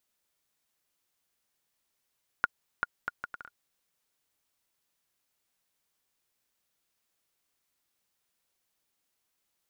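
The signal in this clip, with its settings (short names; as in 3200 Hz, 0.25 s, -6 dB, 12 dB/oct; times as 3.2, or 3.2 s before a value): bouncing ball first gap 0.39 s, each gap 0.64, 1430 Hz, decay 27 ms -11 dBFS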